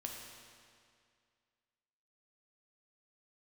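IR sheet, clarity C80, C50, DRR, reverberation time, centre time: 3.5 dB, 2.0 dB, 0.0 dB, 2.2 s, 82 ms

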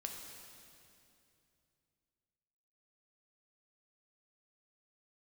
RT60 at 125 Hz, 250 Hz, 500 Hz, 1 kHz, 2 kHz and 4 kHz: 3.5 s, 3.1 s, 2.8 s, 2.5 s, 2.5 s, 2.4 s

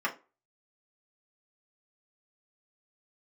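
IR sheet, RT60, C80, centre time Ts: 0.30 s, 21.5 dB, 11 ms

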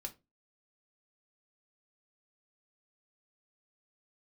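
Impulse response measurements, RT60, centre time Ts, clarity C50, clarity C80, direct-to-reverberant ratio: 0.25 s, 7 ms, 17.5 dB, 26.0 dB, 4.0 dB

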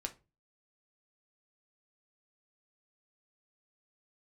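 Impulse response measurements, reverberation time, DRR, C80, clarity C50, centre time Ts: 0.30 s, 4.5 dB, 25.0 dB, 16.5 dB, 6 ms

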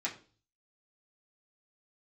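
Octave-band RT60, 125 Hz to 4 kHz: 0.70 s, 0.50 s, 0.45 s, 0.35 s, 0.35 s, 0.40 s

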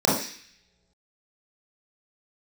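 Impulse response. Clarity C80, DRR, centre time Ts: 7.5 dB, -7.0 dB, 49 ms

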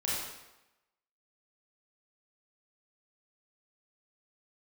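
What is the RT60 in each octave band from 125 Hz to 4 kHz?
0.85 s, 0.90 s, 0.95 s, 0.95 s, 0.90 s, 0.80 s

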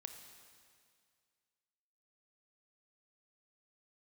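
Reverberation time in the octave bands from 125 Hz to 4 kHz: 2.2 s, 2.1 s, 2.1 s, 2.1 s, 2.1 s, 2.1 s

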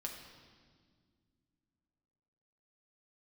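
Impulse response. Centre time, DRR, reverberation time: 45 ms, 0.5 dB, 1.9 s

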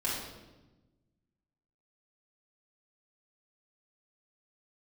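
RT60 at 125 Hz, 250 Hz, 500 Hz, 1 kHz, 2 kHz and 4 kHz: 1.8 s, 1.6 s, 1.2 s, 1.0 s, 0.90 s, 0.85 s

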